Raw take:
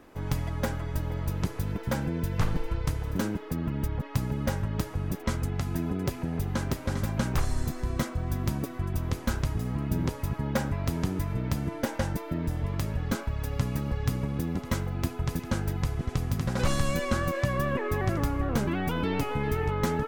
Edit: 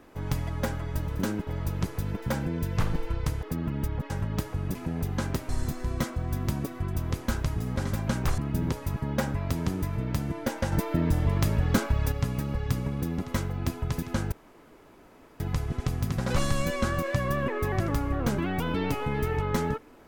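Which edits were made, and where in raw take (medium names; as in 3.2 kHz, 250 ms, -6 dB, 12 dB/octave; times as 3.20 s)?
3.04–3.43 s: move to 1.08 s
4.10–4.51 s: delete
5.16–6.12 s: delete
6.86–7.48 s: move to 9.75 s
12.09–13.49 s: gain +5.5 dB
15.69 s: insert room tone 1.08 s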